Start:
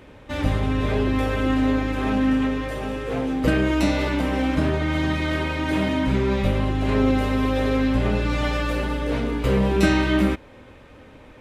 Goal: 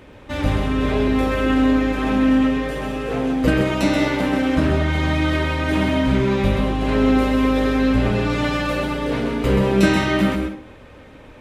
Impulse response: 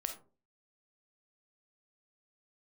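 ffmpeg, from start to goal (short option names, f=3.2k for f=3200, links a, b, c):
-filter_complex "[0:a]asplit=2[a][b];[1:a]atrim=start_sample=2205,adelay=130[c];[b][c]afir=irnorm=-1:irlink=0,volume=-5dB[d];[a][d]amix=inputs=2:normalize=0,volume=2dB"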